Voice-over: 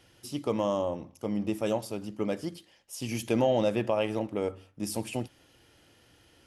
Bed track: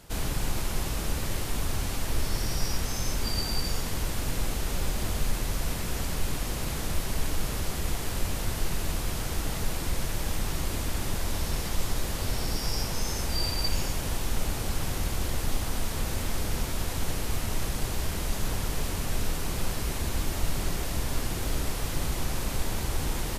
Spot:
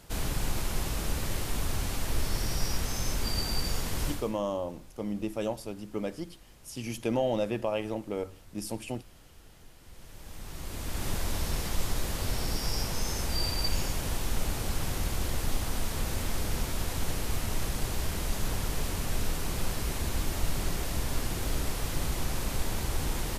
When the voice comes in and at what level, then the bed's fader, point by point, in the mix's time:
3.75 s, -3.0 dB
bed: 4.10 s -1.5 dB
4.41 s -24.5 dB
9.77 s -24.5 dB
11.08 s -1.5 dB

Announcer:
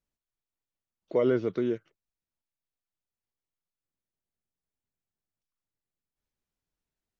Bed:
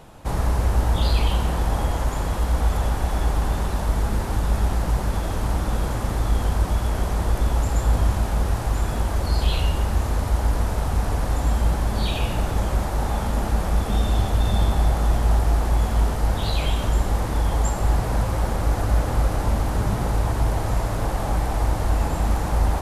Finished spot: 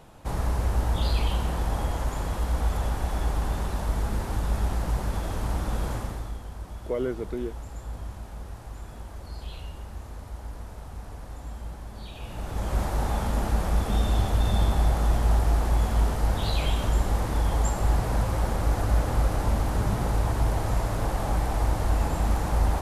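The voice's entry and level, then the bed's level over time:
5.75 s, -4.0 dB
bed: 5.95 s -5 dB
6.42 s -17 dB
12.13 s -17 dB
12.80 s -3 dB

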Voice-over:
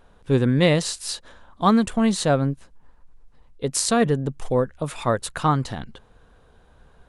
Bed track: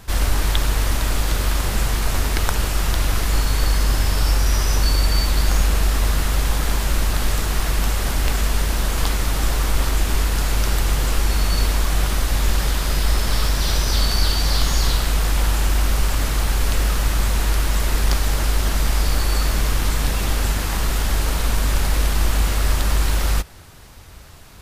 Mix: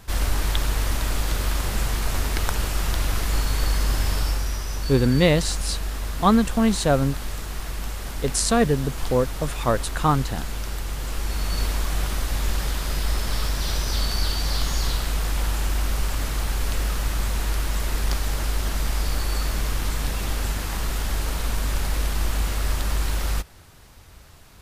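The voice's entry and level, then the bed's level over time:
4.60 s, 0.0 dB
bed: 4.14 s -4 dB
4.62 s -10.5 dB
10.91 s -10.5 dB
11.62 s -5.5 dB

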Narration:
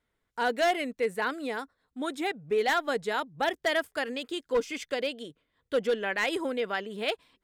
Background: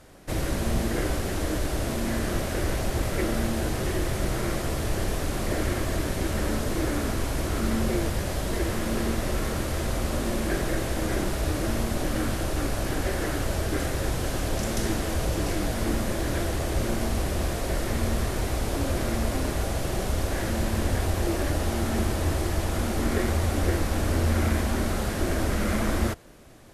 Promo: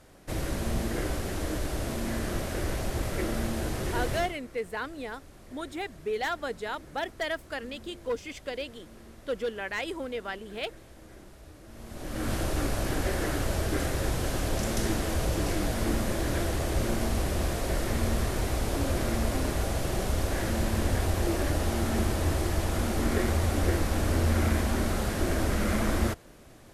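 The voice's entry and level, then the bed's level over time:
3.55 s, -4.5 dB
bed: 4.17 s -4 dB
4.40 s -23 dB
11.66 s -23 dB
12.33 s -1.5 dB

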